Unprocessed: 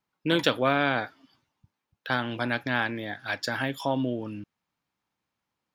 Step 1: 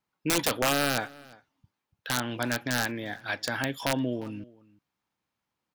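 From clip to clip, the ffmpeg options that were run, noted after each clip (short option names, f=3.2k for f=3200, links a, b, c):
-filter_complex "[0:a]aeval=exprs='(mod(5.96*val(0)+1,2)-1)/5.96':c=same,asplit=2[a][b];[b]adelay=349.9,volume=-22dB,highshelf=f=4k:g=-7.87[c];[a][c]amix=inputs=2:normalize=0,volume=-1dB"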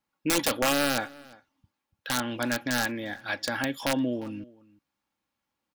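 -af "aecho=1:1:3.6:0.38"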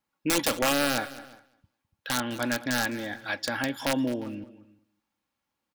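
-af "aecho=1:1:208|416:0.141|0.0212"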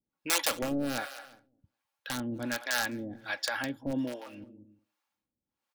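-filter_complex "[0:a]acrossover=split=510[a][b];[a]aeval=exprs='val(0)*(1-1/2+1/2*cos(2*PI*1.3*n/s))':c=same[c];[b]aeval=exprs='val(0)*(1-1/2-1/2*cos(2*PI*1.3*n/s))':c=same[d];[c][d]amix=inputs=2:normalize=0"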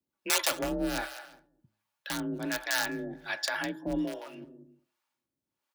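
-af "afreqshift=38,bandreject=f=106.2:t=h:w=4,bandreject=f=212.4:t=h:w=4,bandreject=f=318.6:t=h:w=4,bandreject=f=424.8:t=h:w=4,bandreject=f=531:t=h:w=4,bandreject=f=637.2:t=h:w=4,bandreject=f=743.4:t=h:w=4,bandreject=f=849.6:t=h:w=4,bandreject=f=955.8:t=h:w=4,bandreject=f=1.062k:t=h:w=4,bandreject=f=1.1682k:t=h:w=4,bandreject=f=1.2744k:t=h:w=4,bandreject=f=1.3806k:t=h:w=4,bandreject=f=1.4868k:t=h:w=4,bandreject=f=1.593k:t=h:w=4,bandreject=f=1.6992k:t=h:w=4,bandreject=f=1.8054k:t=h:w=4,volume=1dB"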